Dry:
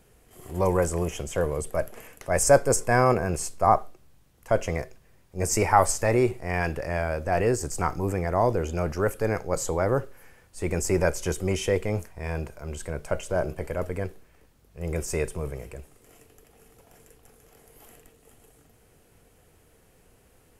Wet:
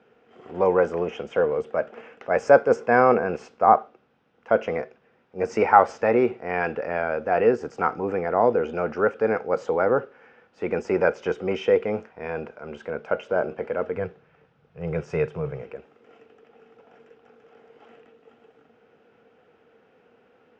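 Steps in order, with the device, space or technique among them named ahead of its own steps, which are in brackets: low-pass 6 kHz 12 dB/octave; 13.96–15.63 s: resonant low shelf 190 Hz +7 dB, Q 3; kitchen radio (cabinet simulation 200–4500 Hz, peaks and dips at 230 Hz +8 dB, 470 Hz +9 dB, 790 Hz +6 dB, 1.4 kHz +9 dB, 2.6 kHz +3 dB, 4.3 kHz -8 dB); trim -1.5 dB

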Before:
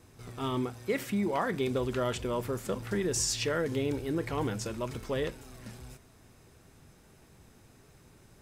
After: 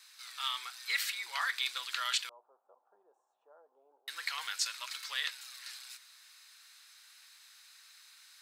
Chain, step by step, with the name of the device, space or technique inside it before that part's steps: 2.29–4.08 s: elliptic low-pass 780 Hz, stop band 60 dB; headphones lying on a table (high-pass 1.4 kHz 24 dB/octave; peaking EQ 4.2 kHz +11.5 dB 0.46 oct); trim +5 dB

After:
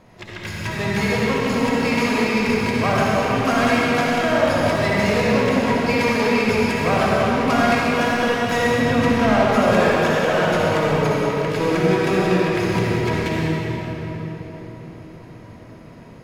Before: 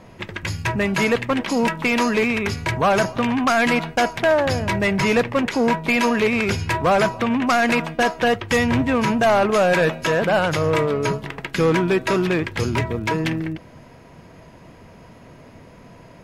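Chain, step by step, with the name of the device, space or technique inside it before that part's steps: 9.07–9.49 s: low-pass 6 kHz 12 dB/octave; shimmer-style reverb (harmony voices +12 st -11 dB; reverberation RT60 4.5 s, pre-delay 52 ms, DRR -5.5 dB); trim -6.5 dB

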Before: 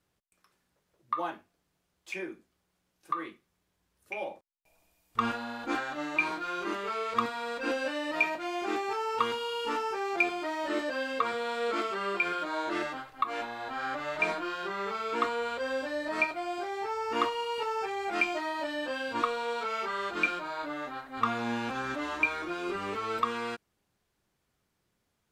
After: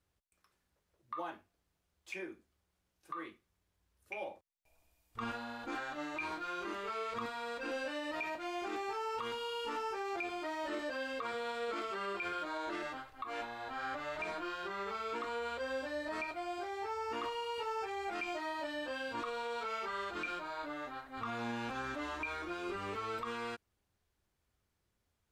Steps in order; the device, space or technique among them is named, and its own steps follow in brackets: car stereo with a boomy subwoofer (resonant low shelf 110 Hz +6.5 dB, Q 1.5; peak limiter -25 dBFS, peak gain reduction 10.5 dB); trim -5.5 dB

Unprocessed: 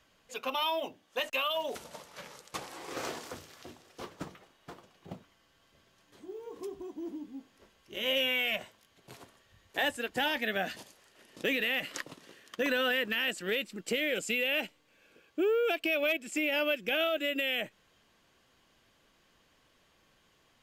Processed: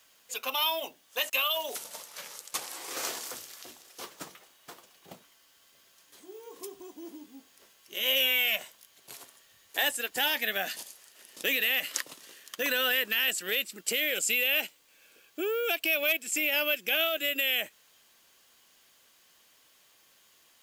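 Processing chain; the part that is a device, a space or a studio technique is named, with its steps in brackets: turntable without a phono preamp (RIAA curve recording; white noise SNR 37 dB)

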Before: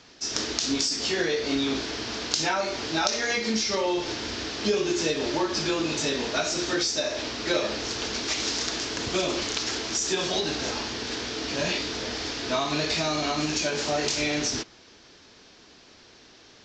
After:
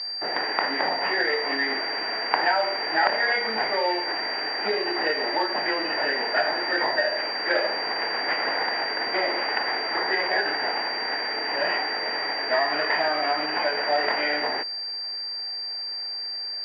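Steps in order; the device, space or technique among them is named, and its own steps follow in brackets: toy sound module (decimation joined by straight lines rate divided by 8×; class-D stage that switches slowly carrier 4.7 kHz; cabinet simulation 660–4300 Hz, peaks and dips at 780 Hz +4 dB, 1.2 kHz -8 dB, 1.9 kHz +9 dB); trim +6.5 dB

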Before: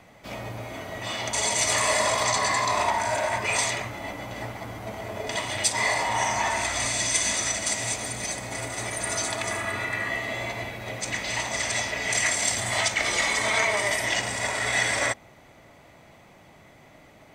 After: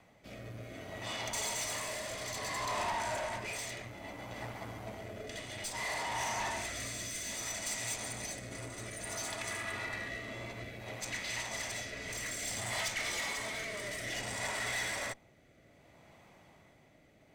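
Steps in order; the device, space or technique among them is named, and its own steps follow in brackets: overdriven rotary cabinet (valve stage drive 26 dB, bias 0.55; rotary cabinet horn 0.6 Hz); trim -4.5 dB

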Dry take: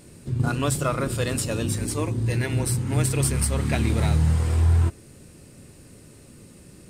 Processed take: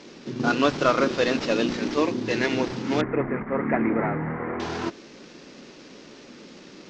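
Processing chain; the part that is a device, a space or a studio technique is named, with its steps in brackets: early wireless headset (high-pass 220 Hz 24 dB/octave; CVSD coder 32 kbps); 3.01–4.60 s: Chebyshev low-pass 2.1 kHz, order 5; trim +6.5 dB

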